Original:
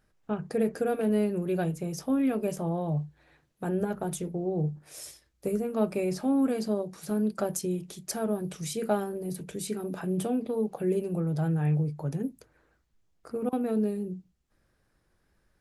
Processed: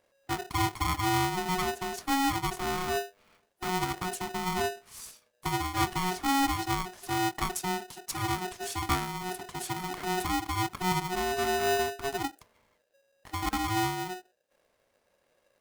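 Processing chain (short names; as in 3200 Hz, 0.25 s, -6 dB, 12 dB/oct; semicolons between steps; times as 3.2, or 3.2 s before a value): polarity switched at an audio rate 550 Hz; gain -1.5 dB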